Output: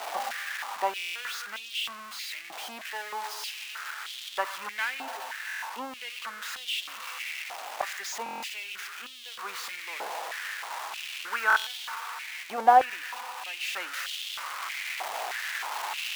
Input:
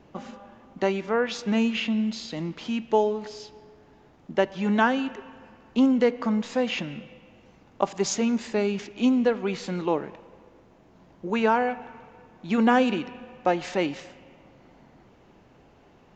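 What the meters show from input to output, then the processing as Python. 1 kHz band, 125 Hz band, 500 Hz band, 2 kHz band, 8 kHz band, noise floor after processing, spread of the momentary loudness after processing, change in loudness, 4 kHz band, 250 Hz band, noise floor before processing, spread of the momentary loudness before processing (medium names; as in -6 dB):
+1.0 dB, under -30 dB, -12.5 dB, +2.5 dB, no reading, -43 dBFS, 11 LU, -6.5 dB, +3.0 dB, -27.0 dB, -56 dBFS, 18 LU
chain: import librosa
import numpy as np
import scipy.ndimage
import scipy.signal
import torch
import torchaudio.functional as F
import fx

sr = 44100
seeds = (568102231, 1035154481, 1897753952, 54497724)

y = x + 0.5 * 10.0 ** (-13.0 / 20.0) * np.diff(np.sign(x), prepend=np.sign(x[:1]))
y = fx.high_shelf(y, sr, hz=5800.0, db=-10.0)
y = fx.rider(y, sr, range_db=10, speed_s=2.0)
y = fx.high_shelf(y, sr, hz=2400.0, db=-11.0)
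y = fx.buffer_glitch(y, sr, at_s=(0.97, 5.47, 8.24, 11.48), block=1024, repeats=7)
y = fx.filter_held_highpass(y, sr, hz=3.2, low_hz=740.0, high_hz=3300.0)
y = y * 10.0 ** (-3.5 / 20.0)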